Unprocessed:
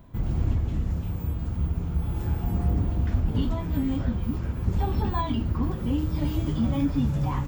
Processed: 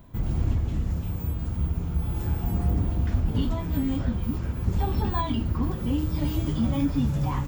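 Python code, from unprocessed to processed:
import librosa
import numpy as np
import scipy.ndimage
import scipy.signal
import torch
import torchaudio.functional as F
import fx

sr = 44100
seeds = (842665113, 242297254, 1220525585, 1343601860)

y = fx.high_shelf(x, sr, hz=4500.0, db=5.0)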